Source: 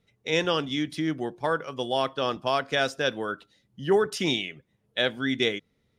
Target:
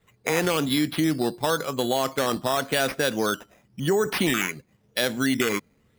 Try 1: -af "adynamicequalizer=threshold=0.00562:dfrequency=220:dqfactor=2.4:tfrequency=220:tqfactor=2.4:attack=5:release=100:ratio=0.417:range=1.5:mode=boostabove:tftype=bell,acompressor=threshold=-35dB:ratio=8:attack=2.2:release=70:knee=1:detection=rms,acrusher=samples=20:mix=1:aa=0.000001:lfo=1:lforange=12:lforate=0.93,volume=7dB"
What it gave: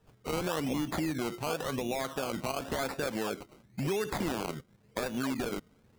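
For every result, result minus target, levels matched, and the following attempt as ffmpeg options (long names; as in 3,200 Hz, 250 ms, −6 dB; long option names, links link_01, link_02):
downward compressor: peak gain reduction +9.5 dB; sample-and-hold swept by an LFO: distortion +5 dB
-af "adynamicequalizer=threshold=0.00562:dfrequency=220:dqfactor=2.4:tfrequency=220:tqfactor=2.4:attack=5:release=100:ratio=0.417:range=1.5:mode=boostabove:tftype=bell,acompressor=threshold=-24dB:ratio=8:attack=2.2:release=70:knee=1:detection=rms,acrusher=samples=20:mix=1:aa=0.000001:lfo=1:lforange=12:lforate=0.93,volume=7dB"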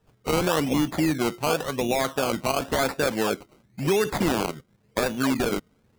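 sample-and-hold swept by an LFO: distortion +5 dB
-af "adynamicequalizer=threshold=0.00562:dfrequency=220:dqfactor=2.4:tfrequency=220:tqfactor=2.4:attack=5:release=100:ratio=0.417:range=1.5:mode=boostabove:tftype=bell,acompressor=threshold=-24dB:ratio=8:attack=2.2:release=70:knee=1:detection=rms,acrusher=samples=8:mix=1:aa=0.000001:lfo=1:lforange=4.8:lforate=0.93,volume=7dB"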